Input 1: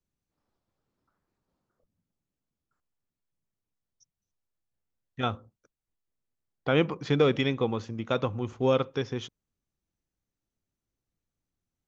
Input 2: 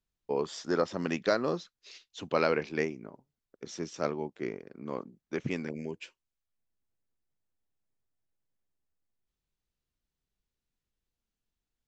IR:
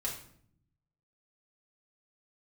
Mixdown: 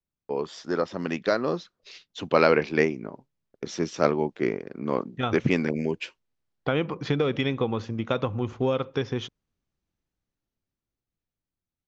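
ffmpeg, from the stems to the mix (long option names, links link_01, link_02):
-filter_complex "[0:a]acompressor=threshold=-26dB:ratio=5,volume=-5dB[link_01];[1:a]agate=range=-33dB:threshold=-53dB:ratio=3:detection=peak,volume=1.5dB[link_02];[link_01][link_02]amix=inputs=2:normalize=0,lowpass=5300,dynaudnorm=framelen=310:gausssize=13:maxgain=10dB"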